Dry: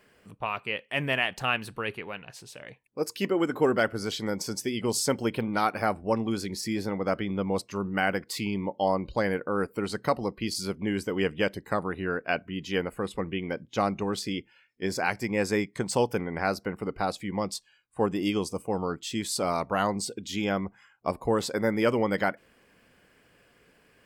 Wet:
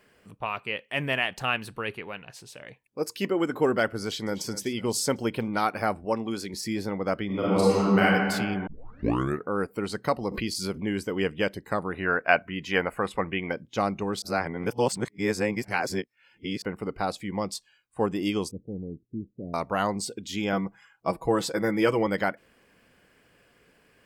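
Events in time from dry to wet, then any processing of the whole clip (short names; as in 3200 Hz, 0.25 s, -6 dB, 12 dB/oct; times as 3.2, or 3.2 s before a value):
4.01–4.48 echo throw 0.25 s, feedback 40%, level -15 dB
6.05–6.54 low shelf 130 Hz -11 dB
7.26–8.02 reverb throw, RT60 1.9 s, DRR -8.5 dB
8.67 tape start 0.83 s
10.28–10.83 backwards sustainer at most 65 dB/s
11.94–13.52 band shelf 1200 Hz +8 dB 2.4 oct
14.22–16.62 reverse
18.51–19.54 Gaussian blur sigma 24 samples
20.52–22.07 comb 6.1 ms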